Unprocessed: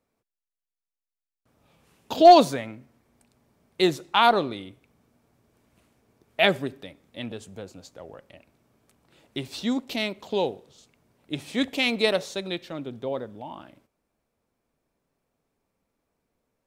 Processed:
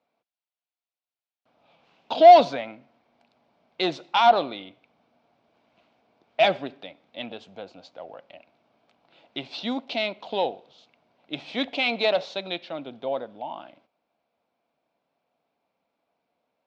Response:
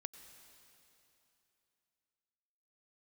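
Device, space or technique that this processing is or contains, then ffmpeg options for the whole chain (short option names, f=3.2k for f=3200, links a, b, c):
overdrive pedal into a guitar cabinet: -filter_complex "[0:a]asettb=1/sr,asplit=3[a][b][c];[a]atrim=end=3.924[d];[b]atrim=start=3.92:end=4.43,asetpts=PTS-STARTPTS,afade=t=in:d=0.004:c=qsin,afade=t=out:st=0.506:d=0.004:c=qsin,highshelf=f=9.1k:g=11.5[e];[c]atrim=start=4.426[f];[d][e]acrossfade=d=0.004:c1=hsin:c2=qsin[g];[g][f]acrossfade=d=0.004:c1=qsin:c2=hsin,asplit=2[h][i];[i]highpass=f=720:p=1,volume=17dB,asoftclip=type=tanh:threshold=-2.5dB[j];[h][j]amix=inputs=2:normalize=0,lowpass=f=4.2k:p=1,volume=-6dB,highpass=92,equalizer=f=110:t=q:w=4:g=-5,equalizer=f=400:t=q:w=4:g=-6,equalizer=f=700:t=q:w=4:g=6,equalizer=f=1.2k:t=q:w=4:g=-4,equalizer=f=1.8k:t=q:w=4:g=-8,lowpass=f=4.5k:w=0.5412,lowpass=f=4.5k:w=1.3066,volume=-6dB"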